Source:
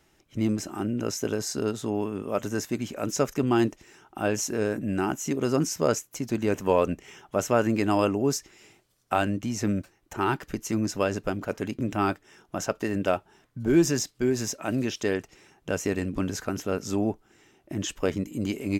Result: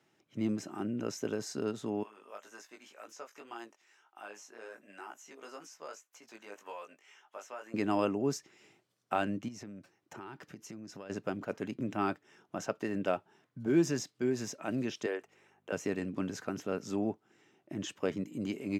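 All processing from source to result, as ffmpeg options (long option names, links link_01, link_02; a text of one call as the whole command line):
ffmpeg -i in.wav -filter_complex "[0:a]asettb=1/sr,asplit=3[link_01][link_02][link_03];[link_01]atrim=end=2.034[link_04];[link_02]atrim=start=2.03:end=7.74,asetpts=PTS-STARTPTS,afade=type=in:duration=0.004:curve=qsin,afade=type=out:start_time=5.706:duration=0.004:curve=qsin,highpass=880,acrossover=split=1300|6500[link_05][link_06][link_07];[link_05]acompressor=threshold=-33dB:ratio=4[link_08];[link_06]acompressor=threshold=-43dB:ratio=4[link_09];[link_07]acompressor=threshold=-46dB:ratio=4[link_10];[link_08][link_09][link_10]amix=inputs=3:normalize=0,flanger=delay=17:depth=3:speed=1.9[link_11];[link_03]atrim=start=7.736[link_12];[link_04][link_11]acrossfade=duration=0.004:curve1=hsin:curve2=qsin[link_13];[link_13][link_12]acrossfade=duration=0.004:curve1=qsin:curve2=hsin,asettb=1/sr,asplit=3[link_14][link_15][link_16];[link_14]atrim=end=9.484[link_17];[link_15]atrim=start=9.48:end=11.1,asetpts=PTS-STARTPTS,afade=type=in:duration=0.004:curve=qsin,afade=type=out:start_time=1.616:duration=0.004:curve=qsin,acompressor=threshold=-35dB:ratio=10:attack=3.2:release=140:knee=1:detection=peak,equalizer=frequency=5400:width=4.4:gain=3.5[link_18];[link_16]atrim=start=11.096[link_19];[link_17][link_18]acrossfade=duration=0.004:curve1=hsin:curve2=qsin[link_20];[link_20][link_19]acrossfade=duration=0.004:curve1=qsin:curve2=hsin,asettb=1/sr,asplit=3[link_21][link_22][link_23];[link_21]atrim=end=15.064[link_24];[link_22]atrim=start=15.06:end=15.72,asetpts=PTS-STARTPTS,afade=type=in:duration=0.004:curve=qsin,afade=type=out:start_time=0.656:duration=0.004:curve=qsin,highpass=frequency=370:width=0.5412,highpass=frequency=370:width=1.3066,equalizer=frequency=4900:width_type=o:width=1:gain=-8,aeval=exprs='val(0)+0.000794*(sin(2*PI*50*n/s)+sin(2*PI*2*50*n/s)/2+sin(2*PI*3*50*n/s)/3+sin(2*PI*4*50*n/s)/4+sin(2*PI*5*50*n/s)/5)':channel_layout=same[link_25];[link_23]atrim=start=15.716[link_26];[link_24][link_25]acrossfade=duration=0.004:curve1=hsin:curve2=qsin[link_27];[link_27][link_26]acrossfade=duration=0.004:curve1=qsin:curve2=hsin,highpass=frequency=120:width=0.5412,highpass=frequency=120:width=1.3066,highshelf=frequency=7700:gain=-11.5,volume=-6.5dB" out.wav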